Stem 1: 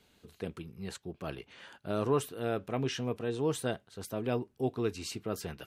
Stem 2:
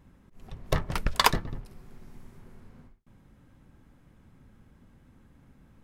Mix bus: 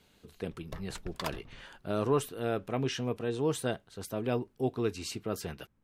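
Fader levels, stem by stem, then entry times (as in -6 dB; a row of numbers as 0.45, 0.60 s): +1.0, -16.5 dB; 0.00, 0.00 s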